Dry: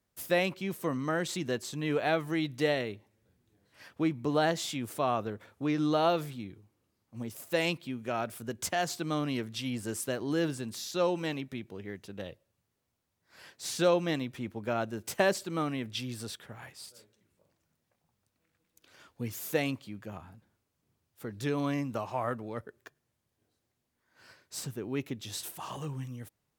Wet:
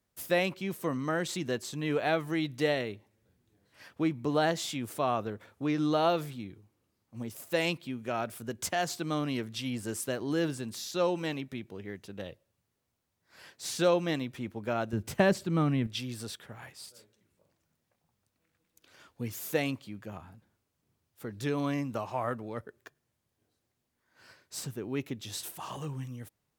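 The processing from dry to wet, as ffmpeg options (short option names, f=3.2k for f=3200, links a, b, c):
-filter_complex "[0:a]asettb=1/sr,asplit=3[a][b][c];[a]atrim=end=14.934[d];[b]atrim=start=14.93:end=15.87,asetpts=PTS-STARTPTS,afade=t=in:d=0.004:c=qsin,afade=t=out:st=0.936:d=0.004:c=qsin,bass=f=250:g=12,treble=f=4k:g=-5[e];[c]atrim=start=15.866[f];[d][e]acrossfade=d=0.004:c1=hsin:c2=qsin[g];[g][f]acrossfade=d=0.004:c1=qsin:c2=hsin"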